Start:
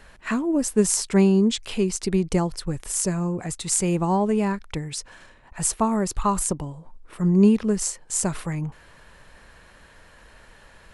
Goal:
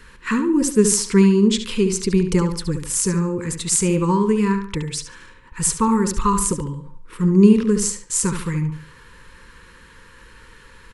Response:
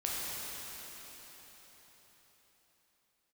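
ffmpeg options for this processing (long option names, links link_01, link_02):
-filter_complex "[0:a]asuperstop=centerf=690:order=20:qfactor=2.1,asplit=2[link_01][link_02];[link_02]adelay=71,lowpass=frequency=4400:poles=1,volume=-7.5dB,asplit=2[link_03][link_04];[link_04]adelay=71,lowpass=frequency=4400:poles=1,volume=0.35,asplit=2[link_05][link_06];[link_06]adelay=71,lowpass=frequency=4400:poles=1,volume=0.35,asplit=2[link_07][link_08];[link_08]adelay=71,lowpass=frequency=4400:poles=1,volume=0.35[link_09];[link_03][link_05][link_07][link_09]amix=inputs=4:normalize=0[link_10];[link_01][link_10]amix=inputs=2:normalize=0,volume=4dB"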